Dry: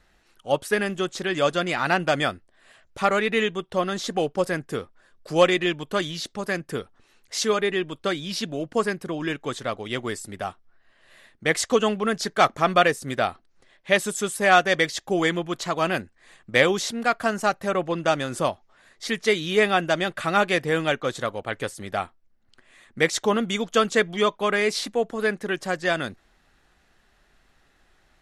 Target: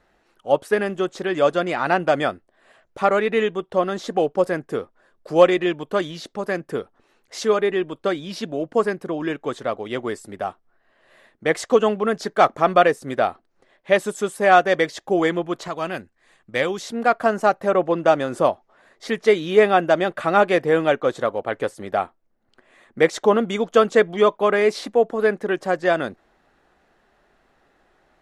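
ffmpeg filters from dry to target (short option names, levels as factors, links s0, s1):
-af "asetnsamples=n=441:p=0,asendcmd='15.68 equalizer g 4.5;16.92 equalizer g 14',equalizer=f=540:w=0.33:g=12,volume=0.447"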